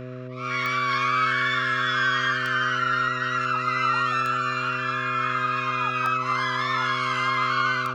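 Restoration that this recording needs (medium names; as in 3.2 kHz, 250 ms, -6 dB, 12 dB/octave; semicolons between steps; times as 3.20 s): de-click; de-hum 126.7 Hz, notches 5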